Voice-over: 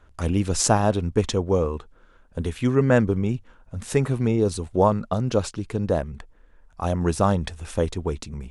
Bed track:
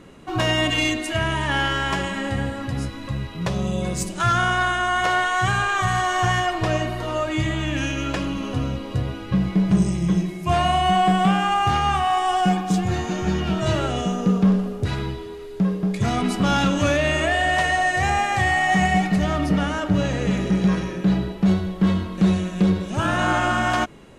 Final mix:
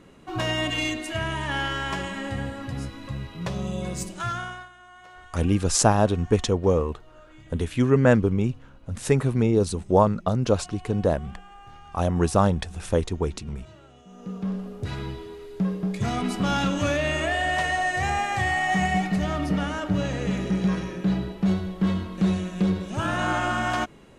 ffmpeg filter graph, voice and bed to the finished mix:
-filter_complex "[0:a]adelay=5150,volume=1.06[s0];[1:a]volume=7.5,afade=t=out:st=4:d=0.69:silence=0.0794328,afade=t=in:st=14.06:d=1.12:silence=0.0707946[s1];[s0][s1]amix=inputs=2:normalize=0"

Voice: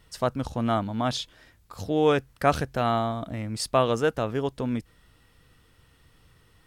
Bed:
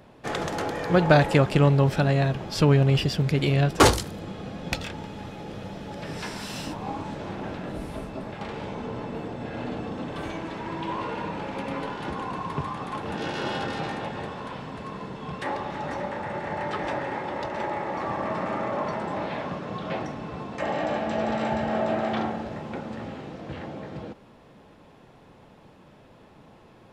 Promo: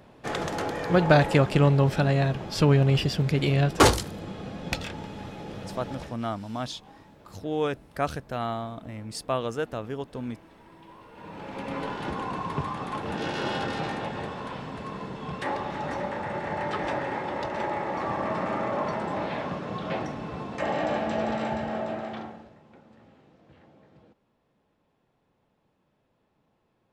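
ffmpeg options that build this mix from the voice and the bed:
-filter_complex "[0:a]adelay=5550,volume=0.501[s0];[1:a]volume=7.94,afade=t=out:st=5.92:d=0.25:silence=0.125893,afade=t=in:st=11.12:d=0.76:silence=0.112202,afade=t=out:st=21:d=1.56:silence=0.105925[s1];[s0][s1]amix=inputs=2:normalize=0"

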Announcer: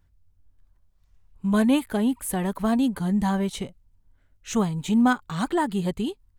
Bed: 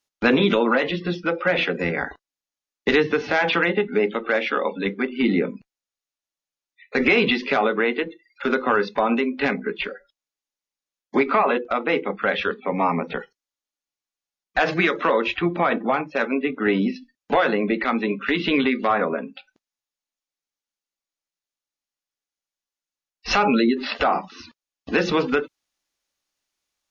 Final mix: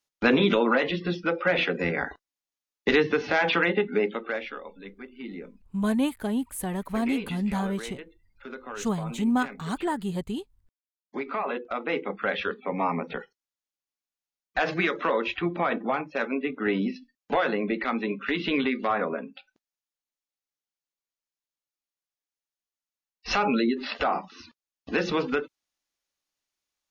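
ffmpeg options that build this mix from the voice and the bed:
-filter_complex "[0:a]adelay=4300,volume=0.596[s0];[1:a]volume=3.16,afade=t=out:st=3.89:d=0.73:silence=0.16788,afade=t=in:st=10.93:d=1.19:silence=0.223872[s1];[s0][s1]amix=inputs=2:normalize=0"

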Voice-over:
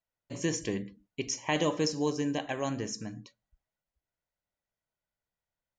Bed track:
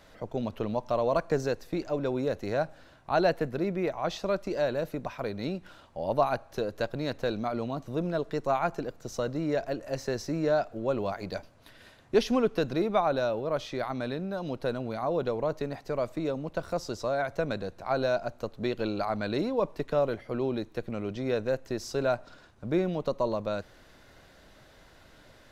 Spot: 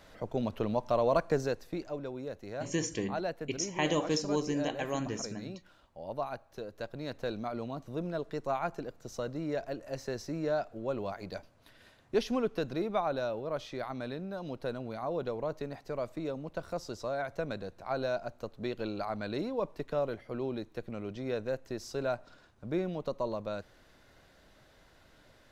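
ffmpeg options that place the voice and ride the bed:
-filter_complex "[0:a]adelay=2300,volume=0.841[s0];[1:a]volume=1.68,afade=t=out:st=1.15:d=0.96:silence=0.316228,afade=t=in:st=6.71:d=0.57:silence=0.562341[s1];[s0][s1]amix=inputs=2:normalize=0"

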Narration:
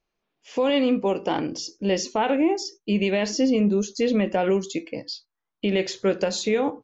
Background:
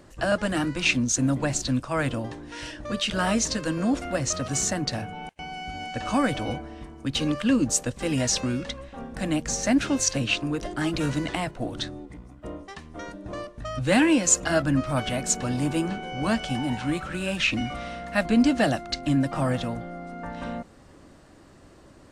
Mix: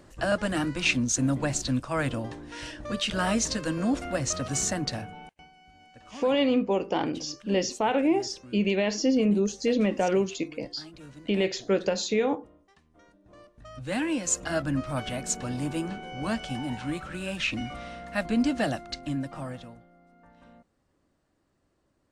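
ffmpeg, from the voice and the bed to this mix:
-filter_complex "[0:a]adelay=5650,volume=0.75[s0];[1:a]volume=4.73,afade=t=out:st=4.84:d=0.68:silence=0.11885,afade=t=in:st=13.26:d=1.39:silence=0.16788,afade=t=out:st=18.73:d=1.14:silence=0.158489[s1];[s0][s1]amix=inputs=2:normalize=0"

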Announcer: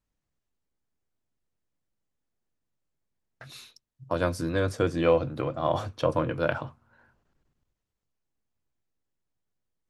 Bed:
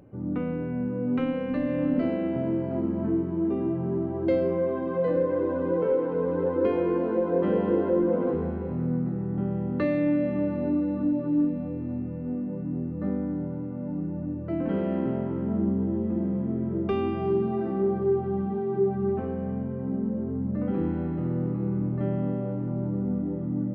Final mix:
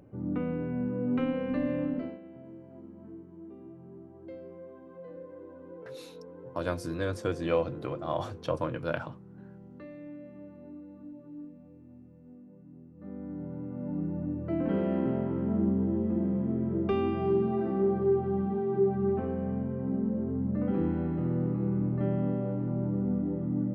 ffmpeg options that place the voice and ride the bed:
-filter_complex "[0:a]adelay=2450,volume=0.531[s0];[1:a]volume=6.68,afade=t=out:st=1.67:d=0.53:silence=0.125893,afade=t=in:st=12.95:d=1.07:silence=0.112202[s1];[s0][s1]amix=inputs=2:normalize=0"

